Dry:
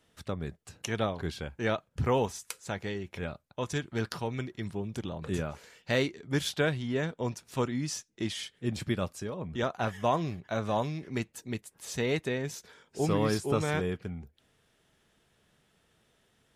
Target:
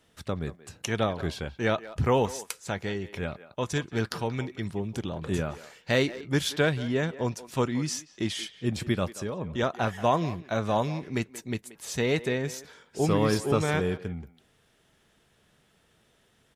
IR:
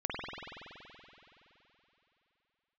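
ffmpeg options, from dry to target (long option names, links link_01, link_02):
-filter_complex "[0:a]asplit=2[link_01][link_02];[link_02]adelay=180,highpass=300,lowpass=3400,asoftclip=type=hard:threshold=-23dB,volume=-15dB[link_03];[link_01][link_03]amix=inputs=2:normalize=0,volume=3.5dB"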